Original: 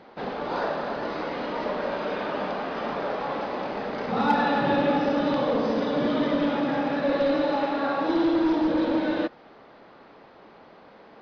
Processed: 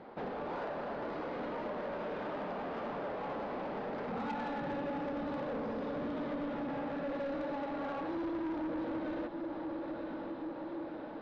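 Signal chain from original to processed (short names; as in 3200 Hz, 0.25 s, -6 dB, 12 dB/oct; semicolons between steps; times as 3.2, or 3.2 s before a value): on a send: diffused feedback echo 0.946 s, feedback 58%, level -12.5 dB; on the sum: compressor 2.5:1, threshold -34 dBFS, peak gain reduction 11 dB; LPF 1300 Hz 6 dB/oct; soft clip -33.5 dBFS, distortion -12 dB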